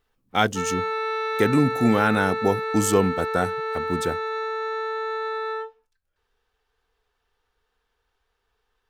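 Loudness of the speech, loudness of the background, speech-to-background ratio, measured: -23.5 LUFS, -27.5 LUFS, 4.0 dB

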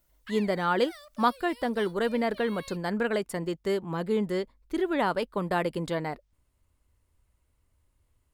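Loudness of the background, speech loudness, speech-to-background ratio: -48.5 LUFS, -29.0 LUFS, 19.5 dB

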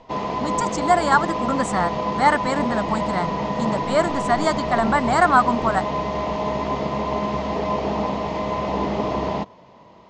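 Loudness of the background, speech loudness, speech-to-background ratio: -25.0 LUFS, -22.0 LUFS, 3.0 dB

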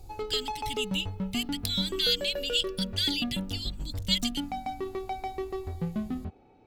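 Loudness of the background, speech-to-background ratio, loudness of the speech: -35.5 LUFS, 5.5 dB, -30.0 LUFS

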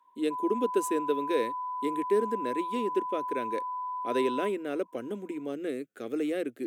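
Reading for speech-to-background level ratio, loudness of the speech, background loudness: 3.0 dB, -32.0 LUFS, -35.0 LUFS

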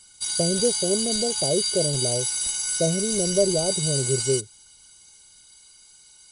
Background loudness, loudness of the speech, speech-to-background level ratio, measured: -23.5 LUFS, -26.5 LUFS, -3.0 dB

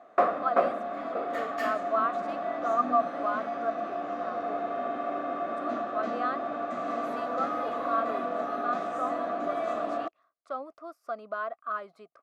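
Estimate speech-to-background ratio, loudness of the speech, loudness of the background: -2.0 dB, -34.0 LUFS, -32.0 LUFS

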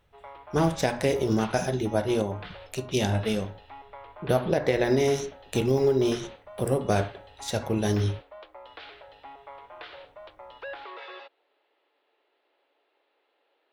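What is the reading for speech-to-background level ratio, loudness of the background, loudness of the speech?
18.5 dB, -45.0 LUFS, -26.5 LUFS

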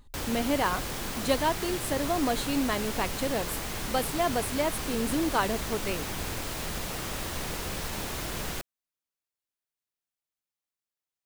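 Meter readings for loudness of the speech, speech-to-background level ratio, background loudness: -30.5 LUFS, 3.0 dB, -33.5 LUFS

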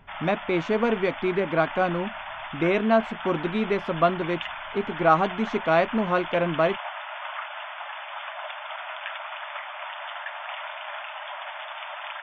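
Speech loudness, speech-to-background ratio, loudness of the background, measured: -25.0 LUFS, 10.0 dB, -35.0 LUFS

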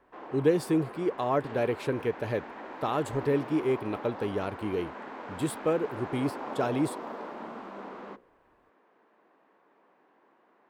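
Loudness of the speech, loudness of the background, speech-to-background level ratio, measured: -30.5 LUFS, -41.0 LUFS, 10.5 dB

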